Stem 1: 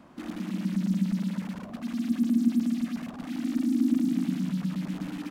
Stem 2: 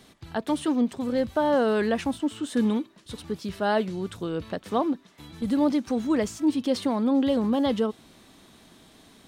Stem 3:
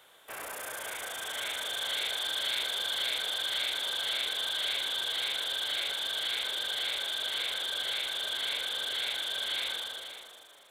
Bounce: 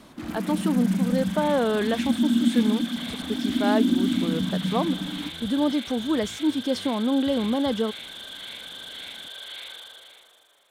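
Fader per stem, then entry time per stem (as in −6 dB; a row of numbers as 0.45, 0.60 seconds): +2.5, −0.5, −5.5 decibels; 0.00, 0.00, 0.00 seconds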